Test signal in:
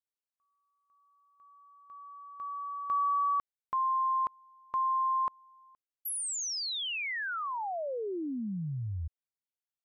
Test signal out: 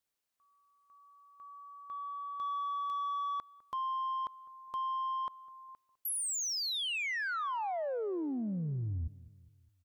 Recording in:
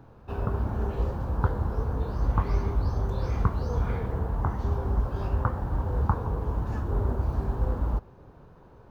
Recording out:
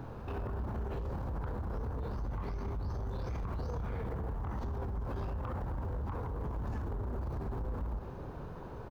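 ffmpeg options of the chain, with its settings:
ffmpeg -i in.wav -filter_complex "[0:a]acompressor=threshold=-39dB:ratio=10:attack=0.11:release=48:detection=peak,asoftclip=type=tanh:threshold=-38.5dB,asplit=2[link_01][link_02];[link_02]adelay=204,lowpass=frequency=1300:poles=1,volume=-18.5dB,asplit=2[link_03][link_04];[link_04]adelay=204,lowpass=frequency=1300:poles=1,volume=0.5,asplit=2[link_05][link_06];[link_06]adelay=204,lowpass=frequency=1300:poles=1,volume=0.5,asplit=2[link_07][link_08];[link_08]adelay=204,lowpass=frequency=1300:poles=1,volume=0.5[link_09];[link_03][link_05][link_07][link_09]amix=inputs=4:normalize=0[link_10];[link_01][link_10]amix=inputs=2:normalize=0,volume=8dB" out.wav

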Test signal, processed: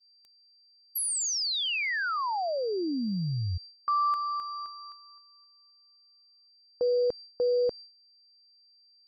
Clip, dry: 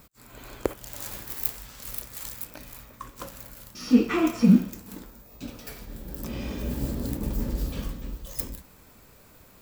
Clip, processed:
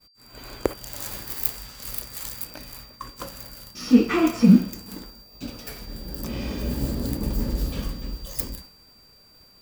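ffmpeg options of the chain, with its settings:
ffmpeg -i in.wav -af "aeval=exprs='val(0)+0.00398*sin(2*PI*4700*n/s)':channel_layout=same,agate=range=-33dB:threshold=-42dB:ratio=3:detection=peak,volume=3dB" out.wav

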